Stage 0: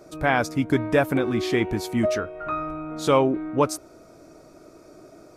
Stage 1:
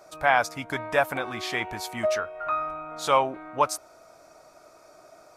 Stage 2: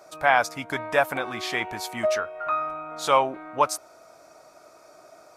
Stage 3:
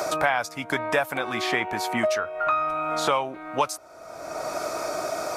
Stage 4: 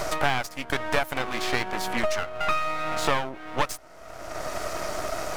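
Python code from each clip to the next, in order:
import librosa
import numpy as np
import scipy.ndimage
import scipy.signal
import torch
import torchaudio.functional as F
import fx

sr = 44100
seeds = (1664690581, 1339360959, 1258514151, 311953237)

y1 = fx.low_shelf_res(x, sr, hz=510.0, db=-12.0, q=1.5)
y2 = fx.low_shelf(y1, sr, hz=68.0, db=-12.0)
y2 = F.gain(torch.from_numpy(y2), 1.5).numpy()
y3 = fx.band_squash(y2, sr, depth_pct=100)
y4 = np.maximum(y3, 0.0)
y4 = F.gain(torch.from_numpy(y4), 2.5).numpy()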